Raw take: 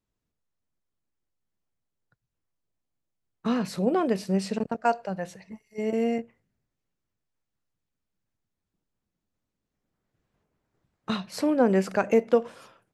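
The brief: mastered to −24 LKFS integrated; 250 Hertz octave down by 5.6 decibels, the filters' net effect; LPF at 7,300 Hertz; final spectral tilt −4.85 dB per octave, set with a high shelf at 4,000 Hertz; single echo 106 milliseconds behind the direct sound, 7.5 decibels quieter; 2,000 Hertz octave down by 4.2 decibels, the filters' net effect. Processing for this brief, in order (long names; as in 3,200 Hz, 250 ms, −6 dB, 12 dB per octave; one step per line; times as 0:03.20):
low-pass filter 7,300 Hz
parametric band 250 Hz −7 dB
parametric band 2,000 Hz −6.5 dB
high-shelf EQ 4,000 Hz +3 dB
single-tap delay 106 ms −7.5 dB
level +5 dB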